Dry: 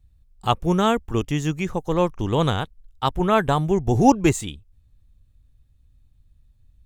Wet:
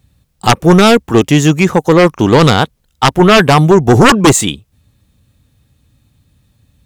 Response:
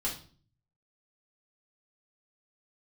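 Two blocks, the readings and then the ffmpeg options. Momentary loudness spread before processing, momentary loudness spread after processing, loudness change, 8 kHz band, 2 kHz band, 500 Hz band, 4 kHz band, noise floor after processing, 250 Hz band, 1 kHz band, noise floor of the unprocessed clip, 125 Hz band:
11 LU, 8 LU, +12.5 dB, +17.0 dB, +17.0 dB, +13.0 dB, +16.0 dB, -59 dBFS, +12.5 dB, +10.5 dB, -59 dBFS, +12.5 dB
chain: -af "highpass=150,aeval=exprs='0.841*sin(PI/2*5.01*val(0)/0.841)':c=same"

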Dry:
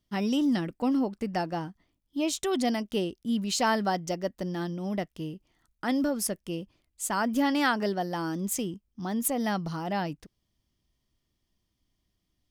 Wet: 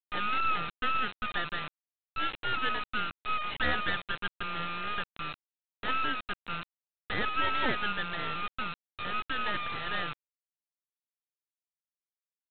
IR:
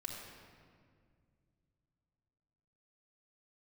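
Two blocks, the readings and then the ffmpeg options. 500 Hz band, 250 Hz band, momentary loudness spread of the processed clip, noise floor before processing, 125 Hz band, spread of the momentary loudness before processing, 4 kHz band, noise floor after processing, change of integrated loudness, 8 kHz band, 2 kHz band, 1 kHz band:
-10.5 dB, -16.0 dB, 10 LU, -79 dBFS, -8.5 dB, 11 LU, +1.5 dB, under -85 dBFS, -3.0 dB, under -40 dB, +4.0 dB, 0.0 dB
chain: -af "afftfilt=real='real(if(lt(b,960),b+48*(1-2*mod(floor(b/48),2)),b),0)':imag='imag(if(lt(b,960),b+48*(1-2*mod(floor(b/48),2)),b),0)':win_size=2048:overlap=0.75,aresample=8000,acrusher=bits=3:dc=4:mix=0:aa=0.000001,aresample=44100"

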